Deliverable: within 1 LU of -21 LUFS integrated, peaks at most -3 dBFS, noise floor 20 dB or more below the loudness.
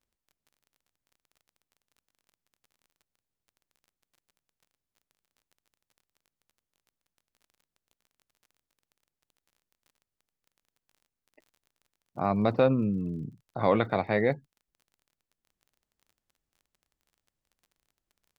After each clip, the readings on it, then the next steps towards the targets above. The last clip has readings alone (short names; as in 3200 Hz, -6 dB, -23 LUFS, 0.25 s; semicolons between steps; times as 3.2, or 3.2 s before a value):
ticks 26/s; loudness -27.5 LUFS; peak -11.5 dBFS; loudness target -21.0 LUFS
-> de-click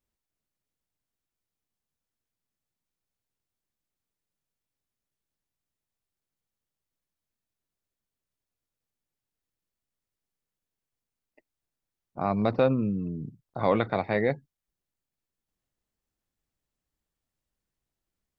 ticks 0/s; loudness -27.5 LUFS; peak -11.5 dBFS; loudness target -21.0 LUFS
-> gain +6.5 dB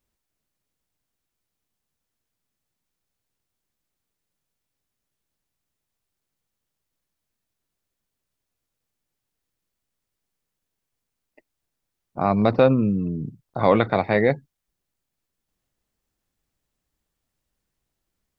loudness -21.0 LUFS; peak -5.0 dBFS; noise floor -82 dBFS